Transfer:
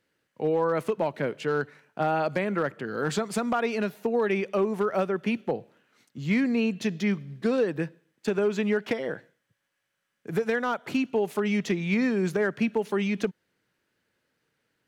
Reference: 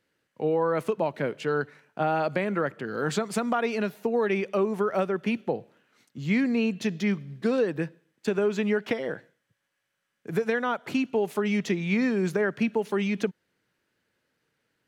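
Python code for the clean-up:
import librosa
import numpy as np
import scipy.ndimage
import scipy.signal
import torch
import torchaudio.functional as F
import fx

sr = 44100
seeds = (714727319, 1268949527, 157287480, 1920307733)

y = fx.fix_declip(x, sr, threshold_db=-17.0)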